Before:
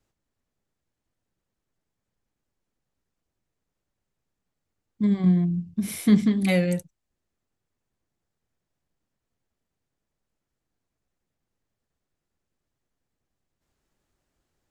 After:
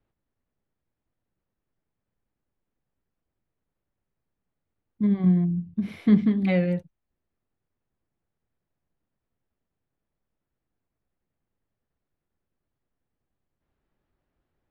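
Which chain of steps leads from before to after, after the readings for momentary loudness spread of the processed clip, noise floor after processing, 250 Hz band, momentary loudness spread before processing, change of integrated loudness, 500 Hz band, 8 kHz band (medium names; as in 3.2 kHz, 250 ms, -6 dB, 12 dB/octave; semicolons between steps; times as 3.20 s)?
9 LU, -84 dBFS, -0.5 dB, 9 LU, -0.5 dB, -1.0 dB, under -25 dB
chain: distance through air 350 m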